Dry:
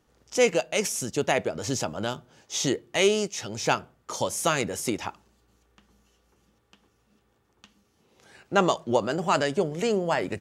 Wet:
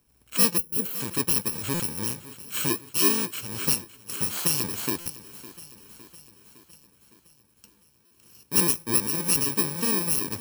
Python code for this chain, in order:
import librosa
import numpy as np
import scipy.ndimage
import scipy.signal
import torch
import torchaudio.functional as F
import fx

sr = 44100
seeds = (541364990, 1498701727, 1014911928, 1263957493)

p1 = fx.bit_reversed(x, sr, seeds[0], block=64)
p2 = fx.spec_box(p1, sr, start_s=0.58, length_s=0.42, low_hz=530.0, high_hz=10000.0, gain_db=-12)
p3 = p2 + fx.echo_feedback(p2, sr, ms=559, feedback_pct=59, wet_db=-17, dry=0)
y = fx.buffer_glitch(p3, sr, at_s=(1.74, 5.0, 8.05), block=256, repeats=9)